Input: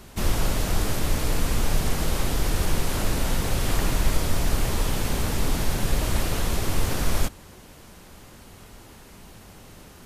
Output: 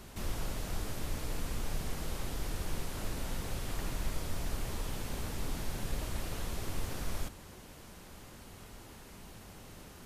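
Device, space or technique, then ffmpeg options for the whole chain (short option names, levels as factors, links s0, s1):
de-esser from a sidechain: -filter_complex "[0:a]asplit=2[s0][s1];[s1]highpass=5900,apad=whole_len=443403[s2];[s0][s2]sidechaincompress=threshold=0.00631:ratio=8:attack=2.1:release=21,volume=0.596"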